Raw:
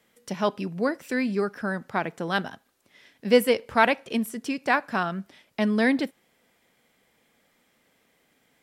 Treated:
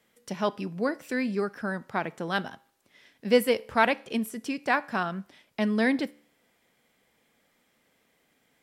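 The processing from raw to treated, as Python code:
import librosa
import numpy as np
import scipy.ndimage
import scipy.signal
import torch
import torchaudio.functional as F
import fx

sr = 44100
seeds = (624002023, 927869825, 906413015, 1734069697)

y = fx.comb_fb(x, sr, f0_hz=73.0, decay_s=0.54, harmonics='all', damping=0.0, mix_pct=30)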